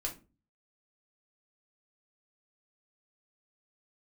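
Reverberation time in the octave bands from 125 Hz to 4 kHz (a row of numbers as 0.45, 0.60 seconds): 0.60, 0.50, 0.35, 0.25, 0.25, 0.20 seconds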